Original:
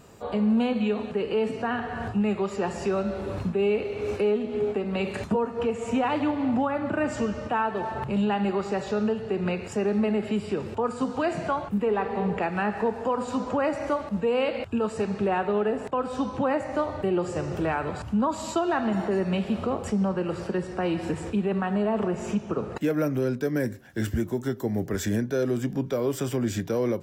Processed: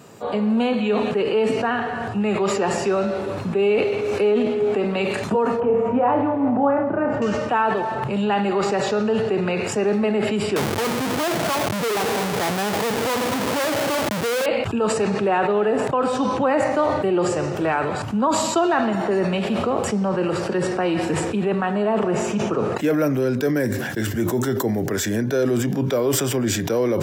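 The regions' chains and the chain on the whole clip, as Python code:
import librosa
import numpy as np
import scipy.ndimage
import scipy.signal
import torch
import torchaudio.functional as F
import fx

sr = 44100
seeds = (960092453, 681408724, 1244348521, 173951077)

y = fx.chain(x, sr, fx.lowpass(hz=1100.0, slope=12),
    fx.room_flutter(wall_m=4.9, rt60_s=0.33), at=(5.6, 7.22))
y = fx.chain(y, sr, fx.lowpass(hz=1400.0, slope=12),
    fx.schmitt(flips_db=-38.0), at=(10.56, 14.46))
y = scipy.signal.sosfilt(scipy.signal.butter(4, 110.0, 'highpass', fs=sr, output='sos'), y)
y = fx.dynamic_eq(y, sr, hz=180.0, q=1.2, threshold_db=-39.0, ratio=4.0, max_db=-5)
y = fx.sustainer(y, sr, db_per_s=30.0)
y = y * librosa.db_to_amplitude(6.0)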